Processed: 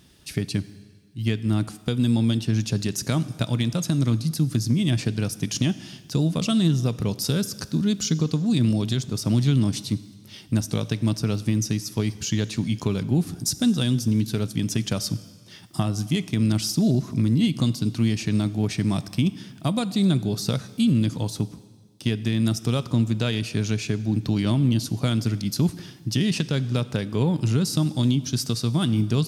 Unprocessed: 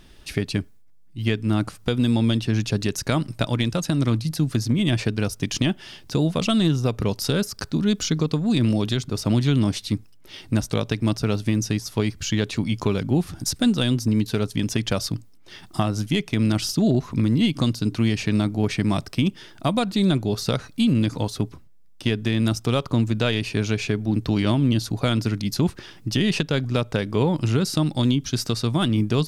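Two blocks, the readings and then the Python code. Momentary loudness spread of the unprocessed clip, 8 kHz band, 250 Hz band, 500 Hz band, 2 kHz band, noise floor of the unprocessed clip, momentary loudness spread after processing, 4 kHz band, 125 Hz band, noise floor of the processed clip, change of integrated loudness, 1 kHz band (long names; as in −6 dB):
6 LU, +1.5 dB, −1.0 dB, −5.0 dB, −5.0 dB, −47 dBFS, 6 LU, −2.5 dB, 0.0 dB, −48 dBFS, −1.0 dB, −6.0 dB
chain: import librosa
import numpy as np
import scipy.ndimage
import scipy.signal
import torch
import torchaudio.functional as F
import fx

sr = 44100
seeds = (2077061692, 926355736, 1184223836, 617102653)

y = scipy.signal.sosfilt(scipy.signal.butter(2, 110.0, 'highpass', fs=sr, output='sos'), x)
y = fx.bass_treble(y, sr, bass_db=9, treble_db=8)
y = fx.rev_plate(y, sr, seeds[0], rt60_s=1.6, hf_ratio=0.95, predelay_ms=0, drr_db=15.0)
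y = F.gain(torch.from_numpy(y), -6.0).numpy()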